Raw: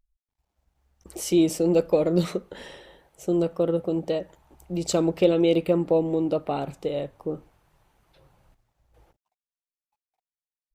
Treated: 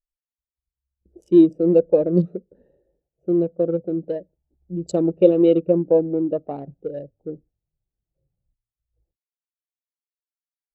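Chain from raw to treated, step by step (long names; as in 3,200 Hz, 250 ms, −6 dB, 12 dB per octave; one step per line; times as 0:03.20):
adaptive Wiener filter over 41 samples
every bin expanded away from the loudest bin 1.5 to 1
level +5.5 dB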